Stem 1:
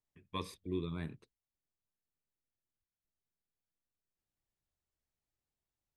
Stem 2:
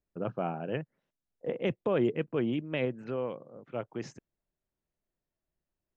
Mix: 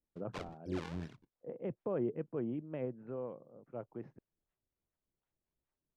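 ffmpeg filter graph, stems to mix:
-filter_complex "[0:a]acrusher=samples=39:mix=1:aa=0.000001:lfo=1:lforange=62.4:lforate=2.6,acrossover=split=530[a][b];[a]aeval=exprs='val(0)*(1-0.7/2+0.7/2*cos(2*PI*4.1*n/s))':c=same[c];[b]aeval=exprs='val(0)*(1-0.7/2-0.7/2*cos(2*PI*4.1*n/s))':c=same[d];[c][d]amix=inputs=2:normalize=0,volume=0.5dB,asplit=2[e][f];[1:a]lowpass=1.1k,volume=-7.5dB[g];[f]apad=whole_len=263228[h];[g][h]sidechaincompress=threshold=-47dB:ratio=4:attack=16:release=844[i];[e][i]amix=inputs=2:normalize=0,lowpass=5k"

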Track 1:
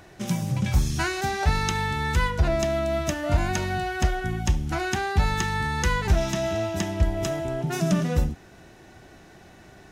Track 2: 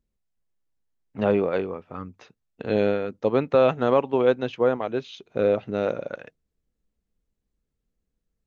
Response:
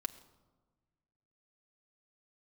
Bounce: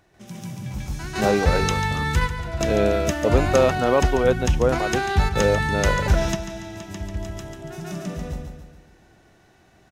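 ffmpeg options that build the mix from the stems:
-filter_complex "[0:a]volume=2dB,asplit=2[a][b];[b]volume=-11dB[c];[1:a]volume=0.5dB,asplit=2[d][e];[e]apad=whole_len=437064[f];[a][f]sidechaingate=range=-14dB:threshold=-49dB:ratio=16:detection=peak[g];[c]aecho=0:1:142|284|426|568|710|852|994:1|0.47|0.221|0.104|0.0488|0.0229|0.0108[h];[g][d][h]amix=inputs=3:normalize=0"

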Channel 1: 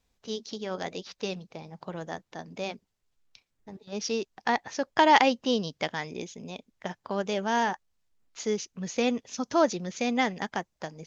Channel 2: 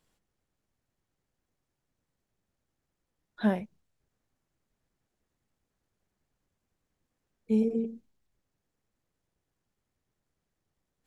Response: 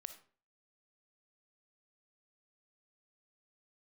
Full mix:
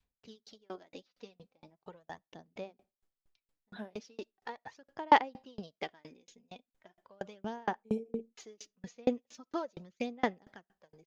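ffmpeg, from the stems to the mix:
-filter_complex "[0:a]aphaser=in_gain=1:out_gain=1:delay=4.2:decay=0.52:speed=0.39:type=sinusoidal,equalizer=f=6k:w=3:g=-6,volume=-8dB,asplit=2[a][b];[b]volume=-11dB[c];[1:a]highpass=f=290:p=1,adelay=350,volume=-1dB[d];[2:a]atrim=start_sample=2205[e];[c][e]afir=irnorm=-1:irlink=0[f];[a][d][f]amix=inputs=3:normalize=0,adynamicequalizer=threshold=0.0112:dfrequency=470:dqfactor=0.87:tfrequency=470:tqfactor=0.87:attack=5:release=100:ratio=0.375:range=2.5:mode=boostabove:tftype=bell,aeval=exprs='val(0)*pow(10,-36*if(lt(mod(4.3*n/s,1),2*abs(4.3)/1000),1-mod(4.3*n/s,1)/(2*abs(4.3)/1000),(mod(4.3*n/s,1)-2*abs(4.3)/1000)/(1-2*abs(4.3)/1000))/20)':c=same"

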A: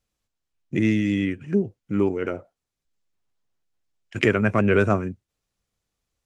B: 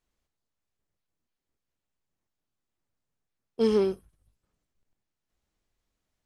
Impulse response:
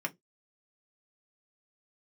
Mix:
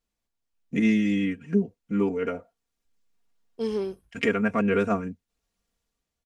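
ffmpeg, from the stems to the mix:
-filter_complex "[0:a]aecho=1:1:4.3:0.99,dynaudnorm=f=100:g=11:m=10dB,volume=-10.5dB[a];[1:a]bandreject=f=1.3k:w=12,volume=-5dB[b];[a][b]amix=inputs=2:normalize=0"

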